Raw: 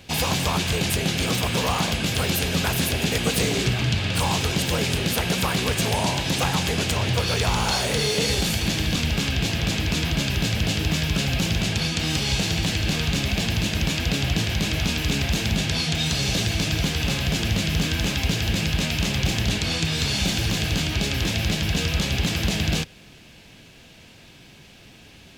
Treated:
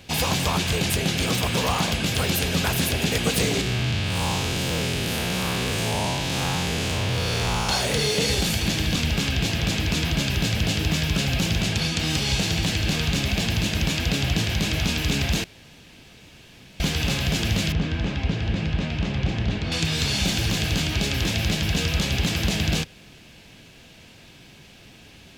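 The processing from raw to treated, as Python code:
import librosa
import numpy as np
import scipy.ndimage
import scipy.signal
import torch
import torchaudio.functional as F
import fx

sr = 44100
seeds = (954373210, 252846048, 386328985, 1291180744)

y = fx.spec_blur(x, sr, span_ms=156.0, at=(3.61, 7.69))
y = fx.spacing_loss(y, sr, db_at_10k=26, at=(17.72, 19.72))
y = fx.edit(y, sr, fx.room_tone_fill(start_s=15.44, length_s=1.36), tone=tone)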